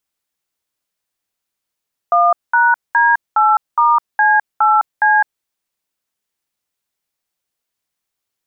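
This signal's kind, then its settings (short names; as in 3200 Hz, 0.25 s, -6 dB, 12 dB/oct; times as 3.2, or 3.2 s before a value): DTMF "1#D8*C8C", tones 0.208 s, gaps 0.206 s, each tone -11.5 dBFS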